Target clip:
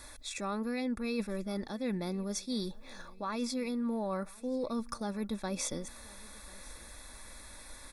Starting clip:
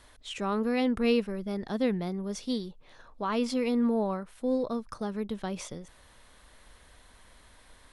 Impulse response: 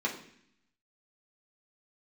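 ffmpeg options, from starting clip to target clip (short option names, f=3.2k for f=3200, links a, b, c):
-af "highshelf=f=4.7k:g=10,aecho=1:1:3.5:0.37,areverse,acompressor=threshold=-36dB:ratio=6,areverse,asuperstop=centerf=3000:order=20:qfactor=6,aecho=1:1:1040|2080:0.0668|0.0241,volume=3.5dB"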